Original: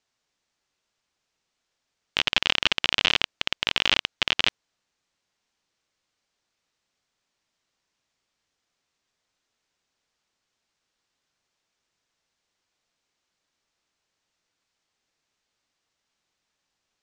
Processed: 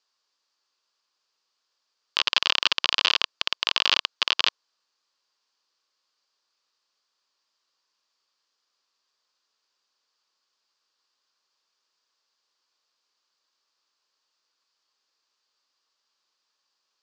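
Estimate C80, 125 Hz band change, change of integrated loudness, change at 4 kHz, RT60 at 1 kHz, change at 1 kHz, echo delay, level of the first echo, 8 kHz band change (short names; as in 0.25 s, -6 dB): none, under -20 dB, +0.5 dB, +1.0 dB, none, +2.0 dB, none, none, +0.5 dB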